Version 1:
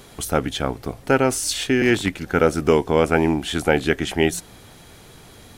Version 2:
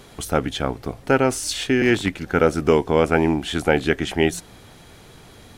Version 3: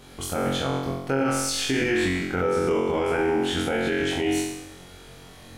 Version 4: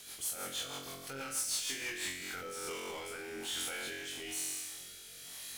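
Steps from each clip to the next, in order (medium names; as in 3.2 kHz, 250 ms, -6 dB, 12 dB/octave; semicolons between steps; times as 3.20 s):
treble shelf 7.7 kHz -6 dB
on a send: flutter echo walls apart 3.8 m, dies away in 0.85 s; on the sum: peak limiter -10 dBFS, peak gain reduction 10 dB; trim -5 dB
pre-emphasis filter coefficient 0.97; power-law waveshaper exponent 0.5; rotary cabinet horn 6.3 Hz, later 1.1 Hz, at 1.75 s; trim -8.5 dB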